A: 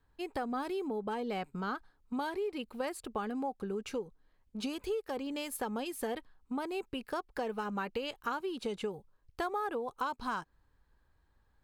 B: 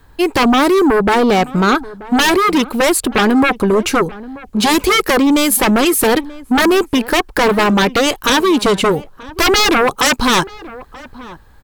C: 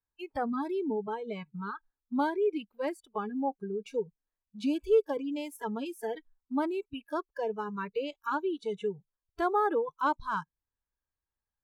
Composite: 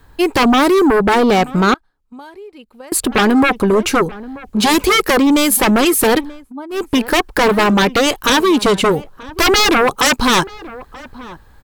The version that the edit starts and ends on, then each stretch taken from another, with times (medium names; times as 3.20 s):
B
1.74–2.92 s: from A
6.41–6.81 s: from C, crossfade 0.24 s